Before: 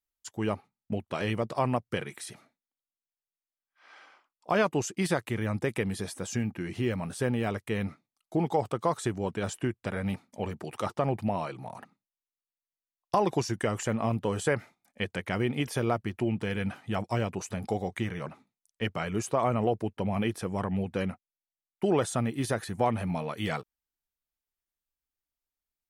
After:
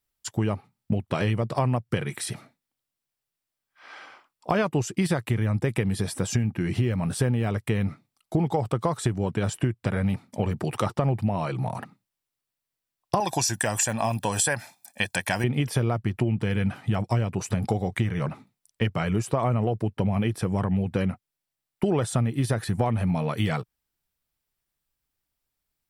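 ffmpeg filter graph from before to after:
ffmpeg -i in.wav -filter_complex "[0:a]asettb=1/sr,asplit=3[link_01][link_02][link_03];[link_01]atrim=end=13.204[link_04];[link_02]atrim=start=13.2:end=15.44,asetpts=PTS-STARTPTS,afade=type=in:duration=0.004:curve=qsin,afade=type=out:start_time=2.236:duration=0.004:curve=qsin,bass=frequency=250:gain=-15,treble=frequency=4000:gain=13,aecho=1:1:1.2:0.64,atrim=end_sample=98784[link_05];[link_03]atrim=start=15.436[link_06];[link_04][link_05]acrossfade=duration=0.004:curve1=hsin:curve2=qsin[link_07];[link_07][link_06]acrossfade=duration=0.004:curve1=qsin:curve2=hsin,equalizer=frequency=120:width=1.1:gain=9,bandreject=frequency=6500:width=13,acompressor=threshold=-31dB:ratio=4,volume=9dB" out.wav

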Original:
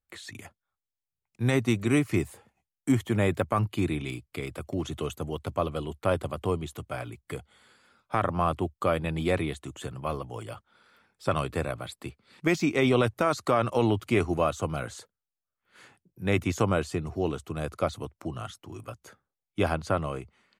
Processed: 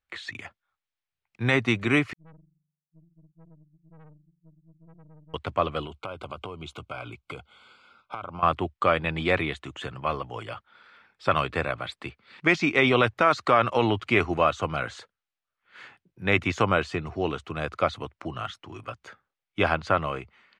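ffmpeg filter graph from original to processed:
ffmpeg -i in.wav -filter_complex "[0:a]asettb=1/sr,asplit=3[link_01][link_02][link_03];[link_01]atrim=end=2.134[link_04];[link_02]atrim=start=2.13:end=5.34,asetpts=PTS-STARTPTS,afade=type=in:duration=0.004:curve=qsin,afade=type=out:start_time=3.206:duration=0.004:curve=qsin,asuperpass=centerf=160:order=20:qfactor=6.7,aeval=exprs='(tanh(282*val(0)+0.7)-tanh(0.7))/282':channel_layout=same[link_05];[link_03]atrim=start=5.336[link_06];[link_04][link_05]acrossfade=duration=0.004:curve1=hsin:curve2=qsin[link_07];[link_07][link_06]acrossfade=duration=0.004:curve1=qsin:curve2=hsin,asettb=1/sr,asplit=3[link_08][link_09][link_10];[link_08]atrim=end=5.854[link_11];[link_09]atrim=start=5.85:end=8.43,asetpts=PTS-STARTPTS,afade=type=in:duration=0.004:curve=qsin,afade=type=out:start_time=2.576:duration=0.004:curve=qsin,acompressor=threshold=-34dB:ratio=16:attack=3.2:release=140:knee=1:detection=peak,asuperstop=centerf=1800:order=8:qfactor=3.3[link_12];[link_10]atrim=start=8.426[link_13];[link_11][link_12]acrossfade=duration=0.004:curve1=hsin:curve2=qsin[link_14];[link_14][link_13]acrossfade=duration=0.004:curve1=qsin:curve2=hsin,lowpass=2700,tiltshelf=frequency=970:gain=-7,volume=5.5dB" out.wav

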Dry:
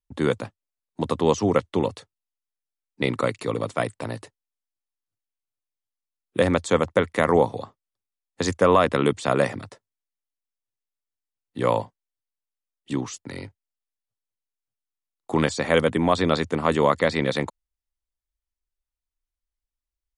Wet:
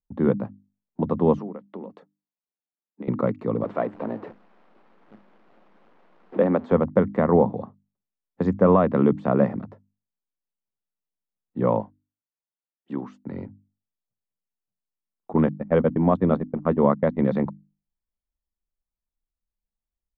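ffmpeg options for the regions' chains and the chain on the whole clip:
ffmpeg -i in.wav -filter_complex "[0:a]asettb=1/sr,asplit=3[link_01][link_02][link_03];[link_01]atrim=end=1.404[link_04];[link_02]atrim=start=1.4:end=3.08,asetpts=PTS-STARTPTS,afade=type=in:duration=0.004:curve=qsin,afade=type=out:start_time=1.676:duration=0.004:curve=qsin,highpass=frequency=200:width=0.5412,highpass=frequency=200:width=1.3066,acompressor=threshold=-33dB:ratio=10:attack=3.2:release=140:knee=1:detection=peak[link_05];[link_03]atrim=start=3.076[link_06];[link_04][link_05]acrossfade=duration=0.004:curve1=hsin:curve2=qsin[link_07];[link_07][link_06]acrossfade=duration=0.004:curve1=qsin:curve2=hsin,asettb=1/sr,asplit=3[link_08][link_09][link_10];[link_08]atrim=end=3.644[link_11];[link_09]atrim=start=3.64:end=6.72,asetpts=PTS-STARTPTS,afade=type=in:duration=0.004:curve=qsin,afade=type=out:start_time=3.076:duration=0.004:curve=qsin,aeval=exprs='val(0)+0.5*0.0335*sgn(val(0))':channel_layout=same,acrossover=split=210 5100:gain=0.0794 1 0.178[link_12][link_13][link_14];[link_12][link_13][link_14]amix=inputs=3:normalize=0[link_15];[link_10]atrim=start=6.716[link_16];[link_11][link_15]acrossfade=duration=0.004:curve1=hsin:curve2=qsin[link_17];[link_17][link_16]acrossfade=duration=0.004:curve1=qsin:curve2=hsin,asettb=1/sr,asplit=3[link_18][link_19][link_20];[link_18]atrim=end=11.804[link_21];[link_19]atrim=start=11.8:end=13.24,asetpts=PTS-STARTPTS,afade=type=in:duration=0.004:curve=qsin,afade=type=out:start_time=1.436:duration=0.004:curve=qsin,highpass=frequency=480:poles=1,equalizer=frequency=1500:width=6.1:gain=4.5[link_22];[link_20]atrim=start=13.236[link_23];[link_21][link_22]acrossfade=duration=0.004:curve1=hsin:curve2=qsin[link_24];[link_24][link_23]acrossfade=duration=0.004:curve1=qsin:curve2=hsin,asettb=1/sr,asplit=3[link_25][link_26][link_27];[link_25]atrim=end=15.334[link_28];[link_26]atrim=start=15.33:end=17.19,asetpts=PTS-STARTPTS,afade=type=in:duration=0.004:curve=qsin,afade=type=out:start_time=1.856:duration=0.004:curve=qsin,agate=range=-38dB:threshold=-23dB:ratio=16:release=100:detection=peak,equalizer=frequency=4800:width_type=o:width=0.24:gain=-11.5[link_29];[link_27]atrim=start=17.186[link_30];[link_28][link_29]acrossfade=duration=0.004:curve1=hsin:curve2=qsin[link_31];[link_31][link_30]acrossfade=duration=0.004:curve1=qsin:curve2=hsin,lowpass=1000,equalizer=frequency=200:width=3.3:gain=12.5,bandreject=frequency=50:width_type=h:width=6,bandreject=frequency=100:width_type=h:width=6,bandreject=frequency=150:width_type=h:width=6,bandreject=frequency=200:width_type=h:width=6,bandreject=frequency=250:width_type=h:width=6,bandreject=frequency=300:width_type=h:width=6" out.wav

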